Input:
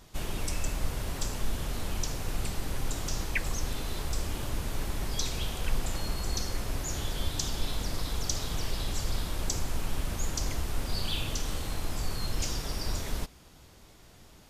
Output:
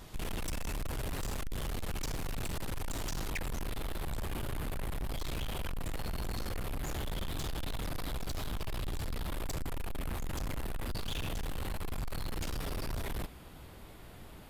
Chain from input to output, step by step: peaking EQ 6 kHz -5 dB 0.96 oct, from 3.31 s -13 dB; saturation -38 dBFS, distortion -6 dB; trim +5 dB

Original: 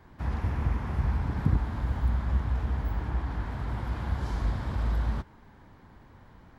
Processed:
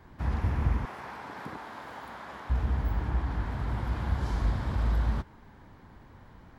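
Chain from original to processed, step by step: 0.85–2.50 s: high-pass 490 Hz 12 dB/octave; trim +1 dB

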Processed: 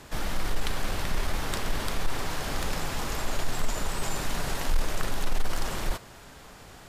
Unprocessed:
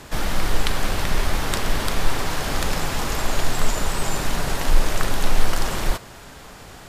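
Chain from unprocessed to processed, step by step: saturation -8 dBFS, distortion -18 dB; 4.03–4.82 s: tape noise reduction on one side only encoder only; trim -6.5 dB

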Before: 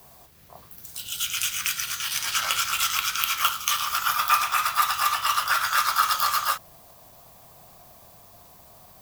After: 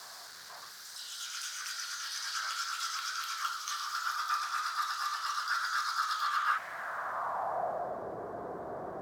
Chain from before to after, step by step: jump at every zero crossing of -21.5 dBFS; resonant high shelf 2 kHz -9 dB, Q 3; band-pass sweep 4.6 kHz -> 410 Hz, 6.03–8.06 s

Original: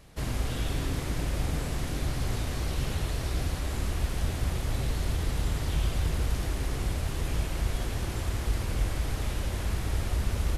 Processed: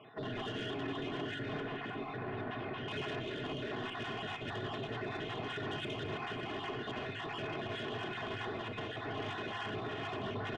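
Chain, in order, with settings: random holes in the spectrogram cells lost 31%; Chebyshev band-pass 110–3400 Hz, order 5; bass shelf 330 Hz -4 dB; band-stop 2.2 kHz, Q 8.8; comb 2.8 ms, depth 67%; peak limiter -33 dBFS, peak gain reduction 7 dB; saturation -38.5 dBFS, distortion -15 dB; 1.60–2.88 s: distance through air 240 m; on a send: delay 559 ms -13 dB; on the sum: simulated room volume 2400 m³, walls furnished, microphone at 1.4 m; trim +4 dB

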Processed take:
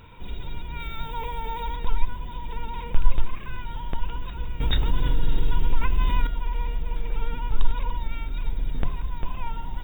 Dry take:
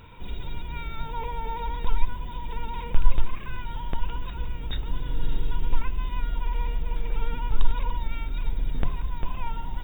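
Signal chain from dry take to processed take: 0.80–1.76 s: treble shelf 3.2 kHz +8.5 dB; 4.60–6.27 s: level flattener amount 50%

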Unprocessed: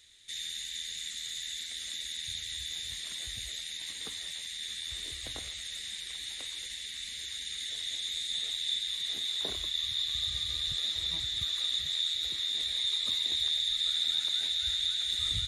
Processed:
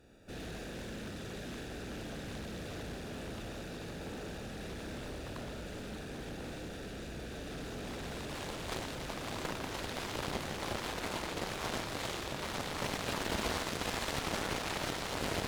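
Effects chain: spectral contrast reduction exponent 0.17; boxcar filter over 42 samples; Schroeder reverb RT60 1.4 s, combs from 29 ms, DRR 1.5 dB; Chebyshev shaper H 7 -8 dB, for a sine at -32 dBFS; loudspeaker Doppler distortion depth 0.62 ms; trim +8 dB

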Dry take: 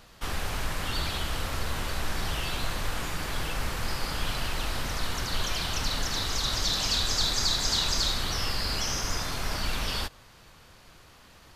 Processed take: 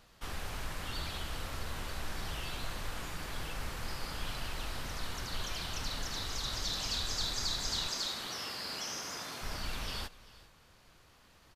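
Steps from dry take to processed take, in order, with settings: 7.88–9.42 s: high-pass 210 Hz 12 dB/octave; delay 392 ms -19.5 dB; trim -8.5 dB

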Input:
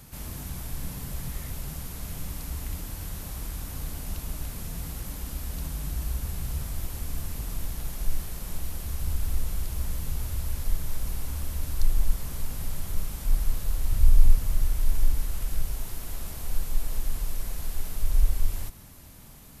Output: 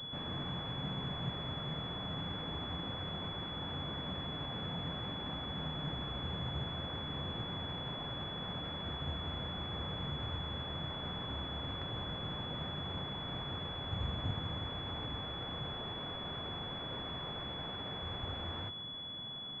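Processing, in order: high-pass 99 Hz 24 dB/octave; class-D stage that switches slowly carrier 3.4 kHz

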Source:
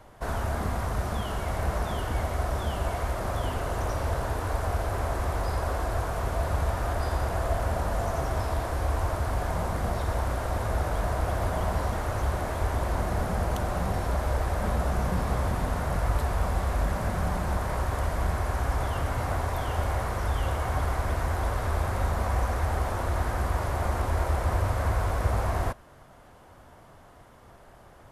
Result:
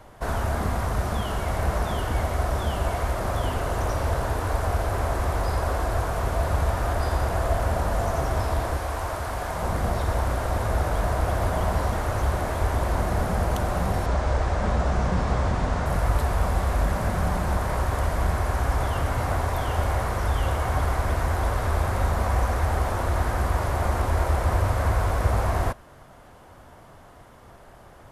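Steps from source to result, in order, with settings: 8.77–9.63 s: bass shelf 380 Hz -8 dB; 14.06–15.86 s: low-pass 7.6 kHz 24 dB/octave; trim +3.5 dB

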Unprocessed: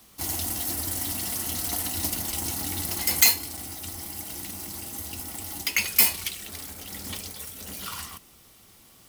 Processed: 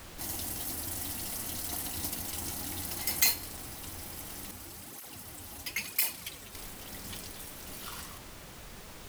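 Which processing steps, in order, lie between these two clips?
added noise pink -40 dBFS; 4.51–6.55 s: cancelling through-zero flanger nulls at 1 Hz, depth 7.1 ms; trim -7.5 dB

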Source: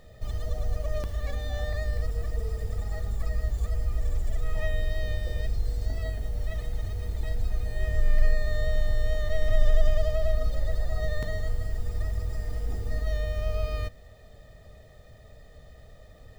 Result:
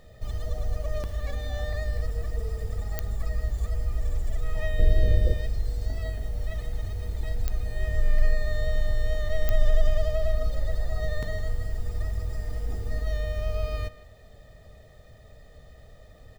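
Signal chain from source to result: 4.79–5.34 s: resonant low shelf 630 Hz +9 dB, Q 1.5; speakerphone echo 160 ms, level -15 dB; clicks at 2.99/7.48/9.49 s, -12 dBFS

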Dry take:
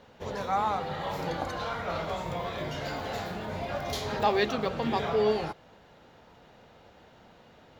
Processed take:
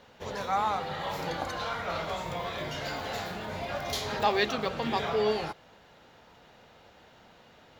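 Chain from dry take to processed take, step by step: tilt shelf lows -3 dB

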